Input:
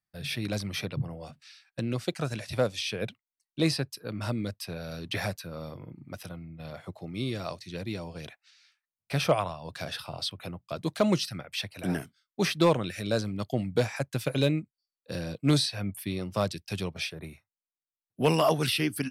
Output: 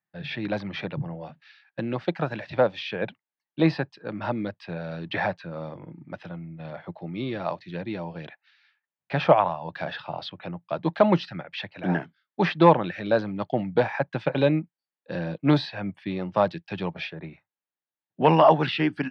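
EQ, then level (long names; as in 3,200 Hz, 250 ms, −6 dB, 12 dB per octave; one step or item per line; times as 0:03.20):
dynamic equaliser 880 Hz, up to +6 dB, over −43 dBFS, Q 1.2
loudspeaker in its box 130–3,600 Hz, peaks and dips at 170 Hz +7 dB, 320 Hz +5 dB, 570 Hz +4 dB, 860 Hz +8 dB, 1,700 Hz +7 dB
0.0 dB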